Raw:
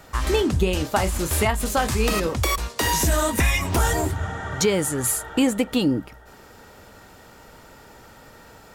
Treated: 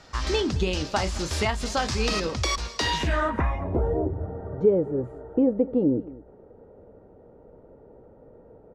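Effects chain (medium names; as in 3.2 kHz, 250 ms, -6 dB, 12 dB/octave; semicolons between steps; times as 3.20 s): low-pass sweep 5.2 kHz -> 490 Hz, 2.78–3.77 s; delay 217 ms -19.5 dB; trim -4.5 dB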